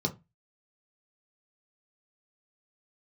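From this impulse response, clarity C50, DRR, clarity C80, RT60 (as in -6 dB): 17.5 dB, 1.0 dB, 25.5 dB, 0.25 s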